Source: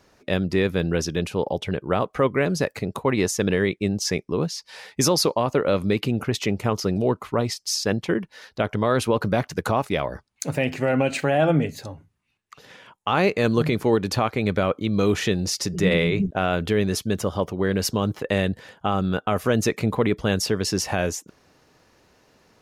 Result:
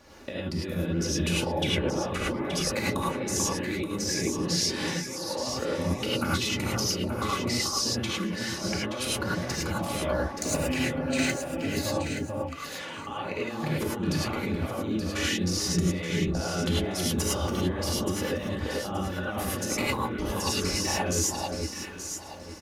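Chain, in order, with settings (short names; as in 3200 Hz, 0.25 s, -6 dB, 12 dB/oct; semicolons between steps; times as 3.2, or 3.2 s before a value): comb 3.5 ms, depth 46%; negative-ratio compressor -31 dBFS, ratio -1; on a send: echo with dull and thin repeats by turns 0.438 s, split 1200 Hz, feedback 53%, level -2.5 dB; on the sum: non-linear reverb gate 0.13 s rising, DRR -5.5 dB; gain -6.5 dB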